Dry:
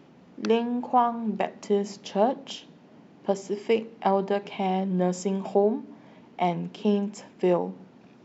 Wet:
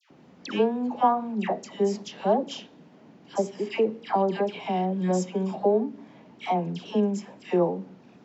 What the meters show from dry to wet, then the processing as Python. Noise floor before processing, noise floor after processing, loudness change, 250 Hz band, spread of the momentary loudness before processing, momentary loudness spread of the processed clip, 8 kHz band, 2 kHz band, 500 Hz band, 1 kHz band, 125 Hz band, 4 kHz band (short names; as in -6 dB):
-54 dBFS, -54 dBFS, 0.0 dB, 0.0 dB, 11 LU, 10 LU, n/a, 0.0 dB, 0.0 dB, 0.0 dB, 0.0 dB, 0.0 dB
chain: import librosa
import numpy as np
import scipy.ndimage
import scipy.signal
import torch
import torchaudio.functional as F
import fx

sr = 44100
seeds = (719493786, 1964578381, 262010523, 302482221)

y = fx.wow_flutter(x, sr, seeds[0], rate_hz=2.1, depth_cents=29.0)
y = fx.dispersion(y, sr, late='lows', ms=108.0, hz=1300.0)